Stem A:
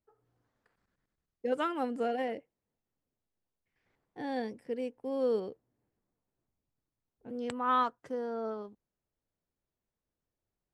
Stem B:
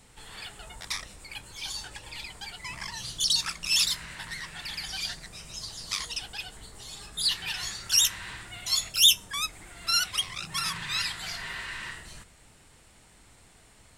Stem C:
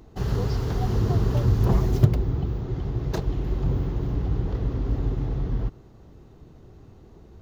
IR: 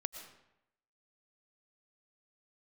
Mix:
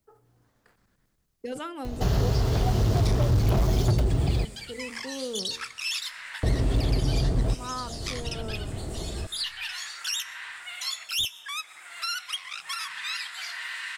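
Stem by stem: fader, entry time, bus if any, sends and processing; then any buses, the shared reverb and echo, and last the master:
−11.5 dB, 0.00 s, no send, bass and treble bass +4 dB, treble +5 dB; hum removal 77.09 Hz, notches 11; level that may fall only so fast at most 110 dB per second
−7.5 dB, 2.15 s, send −10 dB, high-pass filter 1,400 Hz 12 dB per octave
0.0 dB, 1.85 s, muted 0:04.45–0:06.43, send −11 dB, parametric band 640 Hz +9.5 dB 0.36 octaves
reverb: on, RT60 0.85 s, pre-delay 75 ms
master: gain into a clipping stage and back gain 16 dB; multiband upward and downward compressor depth 70%

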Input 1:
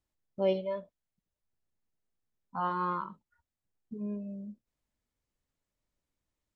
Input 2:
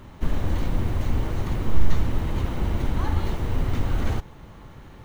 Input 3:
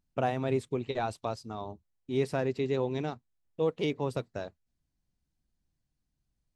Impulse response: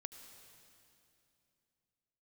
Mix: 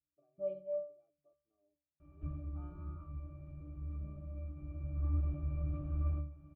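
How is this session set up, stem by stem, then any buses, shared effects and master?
+1.5 dB, 0.00 s, no send, no processing
−1.5 dB, 2.00 s, send −11.5 dB, low-pass filter 3,400 Hz; automatic ducking −12 dB, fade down 0.30 s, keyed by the first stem
−14.5 dB, 0.00 s, no send, resonant band-pass 450 Hz, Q 3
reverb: on, RT60 2.8 s, pre-delay 69 ms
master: resonances in every octave D, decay 0.41 s

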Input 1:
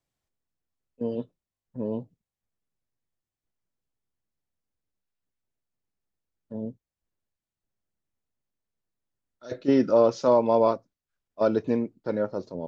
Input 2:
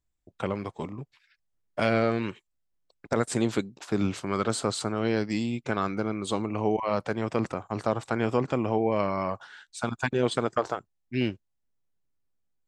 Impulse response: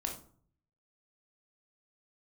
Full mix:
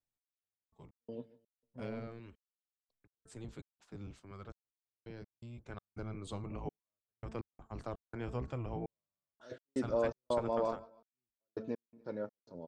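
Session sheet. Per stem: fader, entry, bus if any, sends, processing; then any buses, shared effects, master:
−13.0 dB, 0.00 s, no send, echo send −20.5 dB, no processing
0:05.44 −24 dB → 0:05.99 −15.5 dB, 0.00 s, no send, no echo send, sub-octave generator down 1 octave, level +3 dB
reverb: not used
echo: repeating echo 146 ms, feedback 34%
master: hum removal 221.4 Hz, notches 8; gate pattern "x...x.xx.xxx" 83 BPM −60 dB

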